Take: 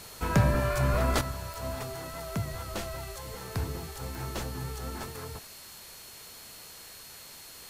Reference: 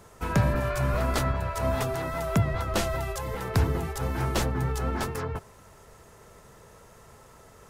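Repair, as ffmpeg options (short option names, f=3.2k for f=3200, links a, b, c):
-af "adeclick=t=4,bandreject=f=4.3k:w=30,afwtdn=0.0045,asetnsamples=n=441:p=0,asendcmd='1.21 volume volume 9dB',volume=0dB"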